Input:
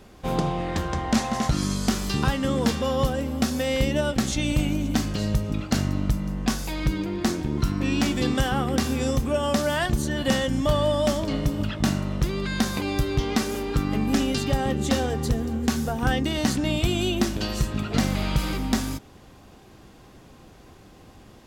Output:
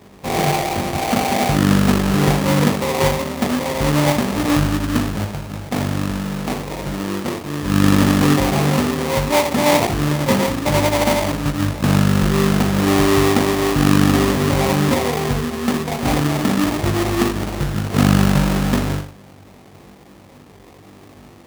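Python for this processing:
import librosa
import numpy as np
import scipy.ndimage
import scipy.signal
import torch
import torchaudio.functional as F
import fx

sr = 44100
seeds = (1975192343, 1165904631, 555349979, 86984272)

y = fx.low_shelf(x, sr, hz=380.0, db=-9.5, at=(5.24, 7.66))
y = fx.room_flutter(y, sr, wall_m=3.5, rt60_s=0.45)
y = fx.sample_hold(y, sr, seeds[0], rate_hz=1500.0, jitter_pct=20)
y = scipy.signal.sosfilt(scipy.signal.butter(2, 80.0, 'highpass', fs=sr, output='sos'), y)
y = y * 10.0 ** (3.0 / 20.0)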